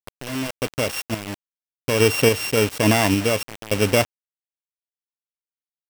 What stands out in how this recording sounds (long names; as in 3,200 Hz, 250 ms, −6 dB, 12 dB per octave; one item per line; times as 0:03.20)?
a buzz of ramps at a fixed pitch in blocks of 16 samples
sample-and-hold tremolo, depth 90%
a quantiser's noise floor 6 bits, dither none